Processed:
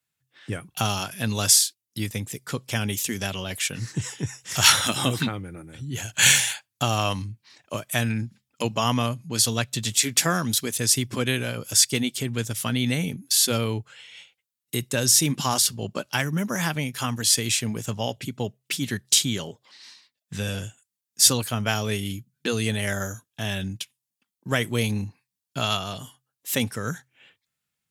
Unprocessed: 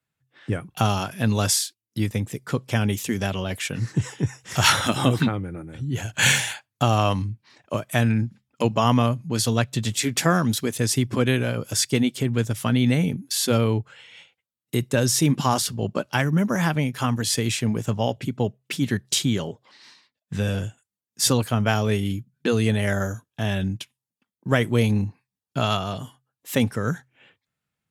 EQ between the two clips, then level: high shelf 2300 Hz +12 dB; -5.5 dB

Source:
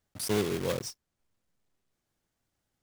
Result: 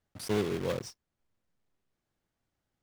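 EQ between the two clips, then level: high shelf 5400 Hz -10 dB; -1.0 dB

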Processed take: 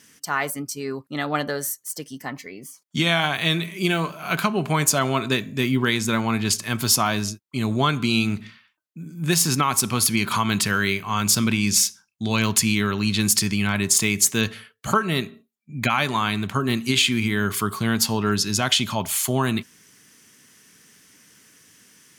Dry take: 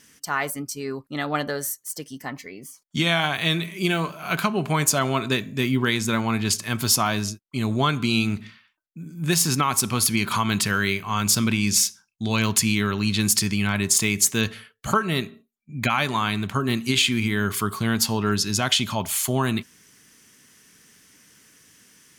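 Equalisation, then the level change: HPF 77 Hz; +1.0 dB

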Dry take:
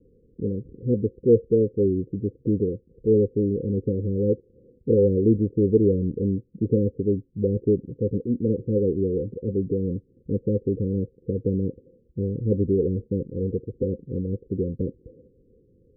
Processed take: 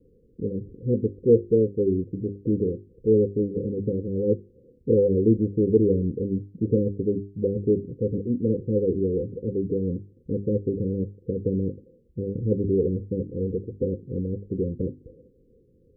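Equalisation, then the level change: notches 50/100/150/200/250/300/350/400 Hz; 0.0 dB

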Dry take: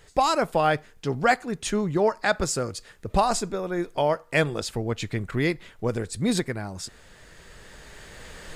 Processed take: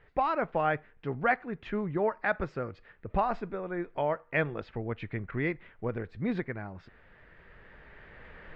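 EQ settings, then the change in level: ladder low-pass 2700 Hz, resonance 30%; air absorption 87 m; 0.0 dB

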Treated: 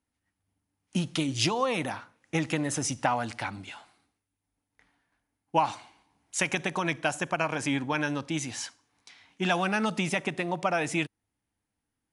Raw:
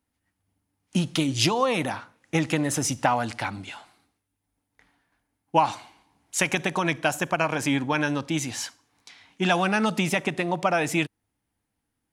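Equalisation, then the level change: Chebyshev low-pass 11000 Hz, order 10; -3.5 dB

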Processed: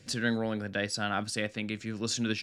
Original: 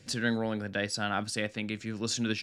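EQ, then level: notch 870 Hz, Q 16; 0.0 dB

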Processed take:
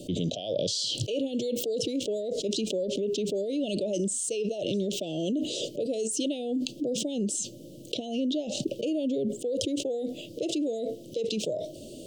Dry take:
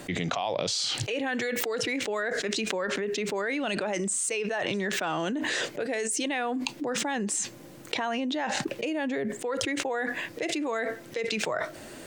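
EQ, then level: Chebyshev band-stop 610–3000 Hz, order 4; high shelf 4100 Hz -5.5 dB; +2.5 dB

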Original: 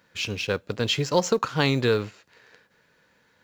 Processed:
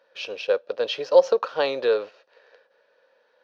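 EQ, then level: polynomial smoothing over 15 samples; resonant high-pass 540 Hz, resonance Q 4.9; notch 2100 Hz, Q 8.3; -4.0 dB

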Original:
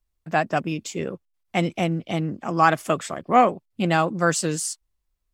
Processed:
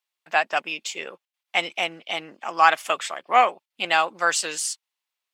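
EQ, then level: HPF 670 Hz 12 dB/oct; bell 860 Hz +4 dB 0.34 oct; bell 2900 Hz +9 dB 1.5 oct; -1.0 dB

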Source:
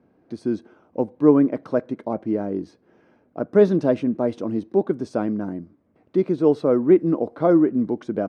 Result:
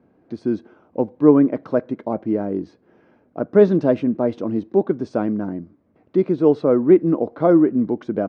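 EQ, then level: air absorption 110 m; +2.5 dB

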